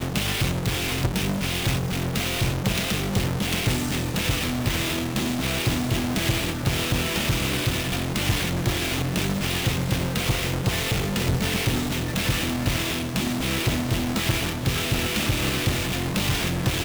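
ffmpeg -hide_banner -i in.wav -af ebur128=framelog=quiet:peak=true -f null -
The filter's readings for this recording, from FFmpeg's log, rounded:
Integrated loudness:
  I:         -24.3 LUFS
  Threshold: -34.3 LUFS
Loudness range:
  LRA:         0.5 LU
  Threshold: -44.3 LUFS
  LRA low:   -24.6 LUFS
  LRA high:  -24.0 LUFS
True peak:
  Peak:      -12.3 dBFS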